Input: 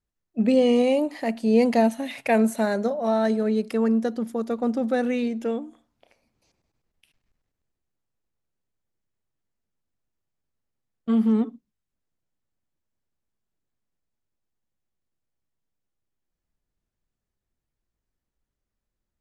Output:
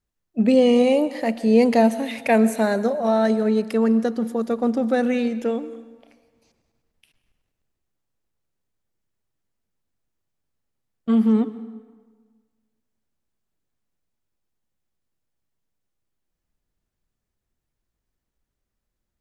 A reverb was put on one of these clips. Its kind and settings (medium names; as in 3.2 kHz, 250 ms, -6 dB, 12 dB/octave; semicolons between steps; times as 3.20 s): plate-style reverb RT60 1.5 s, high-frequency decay 0.75×, pre-delay 110 ms, DRR 15.5 dB; trim +3 dB